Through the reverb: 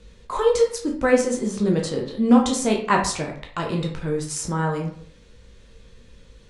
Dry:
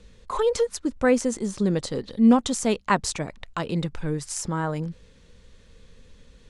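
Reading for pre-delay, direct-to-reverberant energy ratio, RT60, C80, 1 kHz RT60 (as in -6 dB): 10 ms, 0.0 dB, 0.55 s, 11.5 dB, 0.55 s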